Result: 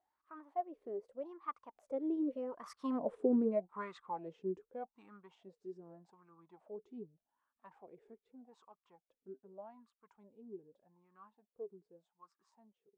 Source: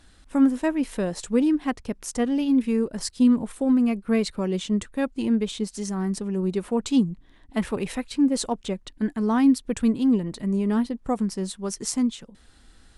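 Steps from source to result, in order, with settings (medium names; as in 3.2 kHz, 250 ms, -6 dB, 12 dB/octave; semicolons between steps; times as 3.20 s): Doppler pass-by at 3.07 s, 41 m/s, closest 14 m; wah-wah 0.83 Hz 390–1200 Hz, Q 12; trim +13 dB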